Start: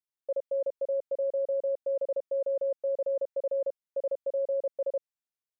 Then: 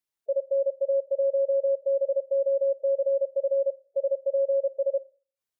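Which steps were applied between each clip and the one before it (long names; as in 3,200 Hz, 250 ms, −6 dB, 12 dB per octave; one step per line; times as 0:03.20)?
four-comb reverb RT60 0.41 s, combs from 28 ms, DRR 19 dB
gate on every frequency bin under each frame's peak −15 dB strong
level +5 dB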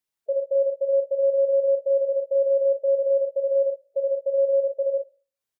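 ambience of single reflections 40 ms −8 dB, 56 ms −16 dB
level +1.5 dB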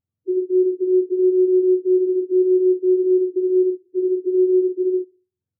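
frequency axis turned over on the octave scale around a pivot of 450 Hz
level +4.5 dB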